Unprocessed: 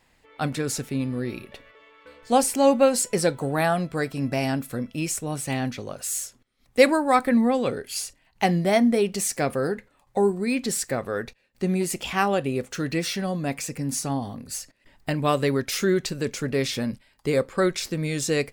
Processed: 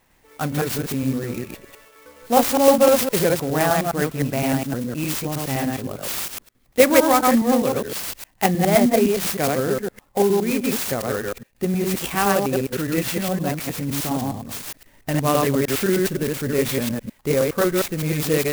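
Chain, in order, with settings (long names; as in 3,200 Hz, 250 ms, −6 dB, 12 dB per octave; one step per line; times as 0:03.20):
delay that plays each chunk backwards 103 ms, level −1 dB
converter with an unsteady clock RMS 0.056 ms
level +1.5 dB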